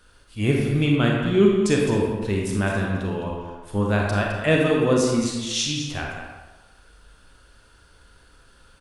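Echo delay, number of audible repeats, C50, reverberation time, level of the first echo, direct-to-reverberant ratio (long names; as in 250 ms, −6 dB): 211 ms, 1, 0.5 dB, 1.2 s, −10.5 dB, −1.5 dB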